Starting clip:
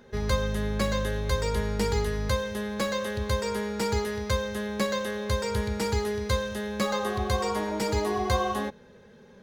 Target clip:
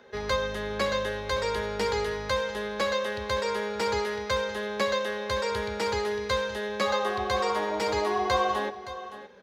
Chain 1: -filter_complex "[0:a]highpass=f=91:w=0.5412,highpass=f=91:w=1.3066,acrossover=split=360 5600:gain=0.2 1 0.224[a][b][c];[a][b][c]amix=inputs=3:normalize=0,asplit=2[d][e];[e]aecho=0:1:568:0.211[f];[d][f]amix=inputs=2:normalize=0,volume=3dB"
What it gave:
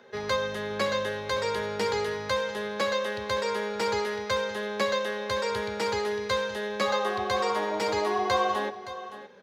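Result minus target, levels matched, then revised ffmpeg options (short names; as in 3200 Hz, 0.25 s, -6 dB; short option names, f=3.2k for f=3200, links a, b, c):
125 Hz band -2.5 dB
-filter_complex "[0:a]highpass=f=37:w=0.5412,highpass=f=37:w=1.3066,acrossover=split=360 5600:gain=0.2 1 0.224[a][b][c];[a][b][c]amix=inputs=3:normalize=0,asplit=2[d][e];[e]aecho=0:1:568:0.211[f];[d][f]amix=inputs=2:normalize=0,volume=3dB"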